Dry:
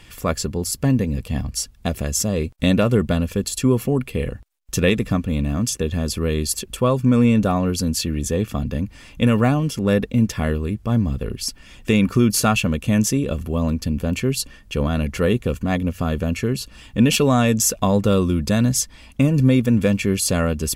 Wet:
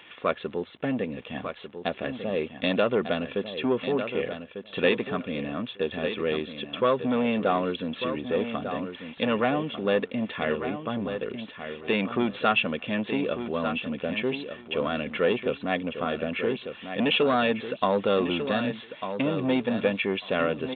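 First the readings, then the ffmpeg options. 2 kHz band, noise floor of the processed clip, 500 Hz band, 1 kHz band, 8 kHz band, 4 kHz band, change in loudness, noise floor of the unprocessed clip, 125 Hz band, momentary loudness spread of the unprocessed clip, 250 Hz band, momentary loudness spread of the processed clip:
−1.5 dB, −47 dBFS, −2.5 dB, −2.0 dB, below −40 dB, −4.5 dB, −7.5 dB, −46 dBFS, −18.0 dB, 9 LU, −9.5 dB, 9 LU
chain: -af "acrusher=bits=9:dc=4:mix=0:aa=0.000001,asoftclip=type=tanh:threshold=-11.5dB,highpass=360,aresample=8000,aresample=44100,aecho=1:1:1197|2394:0.355|0.0568"

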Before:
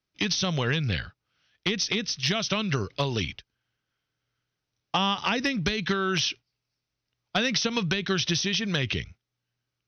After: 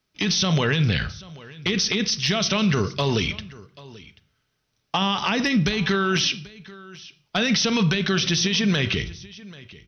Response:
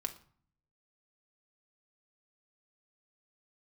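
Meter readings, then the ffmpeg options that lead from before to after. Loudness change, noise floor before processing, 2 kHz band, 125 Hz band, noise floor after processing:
+5.0 dB, −85 dBFS, +4.0 dB, +6.0 dB, −73 dBFS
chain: -filter_complex "[0:a]asplit=2[link_01][link_02];[1:a]atrim=start_sample=2205,afade=type=out:start_time=0.37:duration=0.01,atrim=end_sample=16758[link_03];[link_02][link_03]afir=irnorm=-1:irlink=0,volume=1dB[link_04];[link_01][link_04]amix=inputs=2:normalize=0,alimiter=limit=-16dB:level=0:latency=1:release=14,aecho=1:1:786:0.0944,volume=3dB"

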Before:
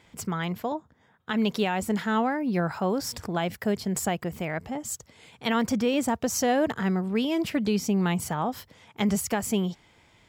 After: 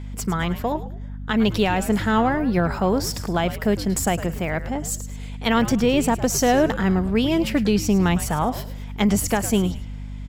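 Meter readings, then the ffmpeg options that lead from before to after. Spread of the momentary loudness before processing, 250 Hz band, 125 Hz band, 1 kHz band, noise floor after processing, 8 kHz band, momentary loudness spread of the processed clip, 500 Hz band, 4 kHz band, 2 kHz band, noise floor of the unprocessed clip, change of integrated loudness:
8 LU, +5.5 dB, +7.5 dB, +5.5 dB, −33 dBFS, +5.5 dB, 9 LU, +6.0 dB, +5.5 dB, +5.5 dB, −61 dBFS, +6.0 dB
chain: -filter_complex "[0:a]aeval=exprs='0.178*(cos(1*acos(clip(val(0)/0.178,-1,1)))-cos(1*PI/2))+0.00355*(cos(4*acos(clip(val(0)/0.178,-1,1)))-cos(4*PI/2))':channel_layout=same,aeval=exprs='val(0)+0.0141*(sin(2*PI*50*n/s)+sin(2*PI*2*50*n/s)/2+sin(2*PI*3*50*n/s)/3+sin(2*PI*4*50*n/s)/4+sin(2*PI*5*50*n/s)/5)':channel_layout=same,asplit=4[link_01][link_02][link_03][link_04];[link_02]adelay=106,afreqshift=-110,volume=-13dB[link_05];[link_03]adelay=212,afreqshift=-220,volume=-22.1dB[link_06];[link_04]adelay=318,afreqshift=-330,volume=-31.2dB[link_07];[link_01][link_05][link_06][link_07]amix=inputs=4:normalize=0,volume=5.5dB"

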